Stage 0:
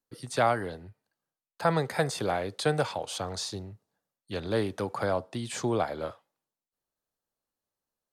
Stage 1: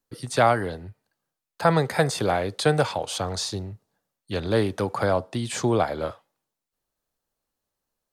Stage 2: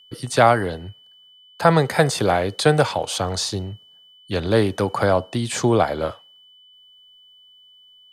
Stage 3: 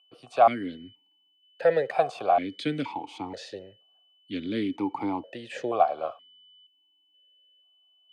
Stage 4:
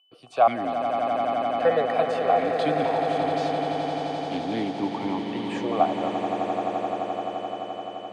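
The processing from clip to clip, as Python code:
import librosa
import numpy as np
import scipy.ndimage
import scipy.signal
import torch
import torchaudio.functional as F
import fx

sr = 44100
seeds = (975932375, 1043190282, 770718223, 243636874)

y1 = fx.low_shelf(x, sr, hz=63.0, db=8.0)
y1 = F.gain(torch.from_numpy(y1), 5.5).numpy()
y2 = y1 + 10.0 ** (-53.0 / 20.0) * np.sin(2.0 * np.pi * 3000.0 * np.arange(len(y1)) / sr)
y2 = F.gain(torch.from_numpy(y2), 4.5).numpy()
y3 = fx.vowel_held(y2, sr, hz=2.1)
y3 = F.gain(torch.from_numpy(y3), 3.0).numpy()
y4 = fx.echo_swell(y3, sr, ms=86, loudest=8, wet_db=-9.5)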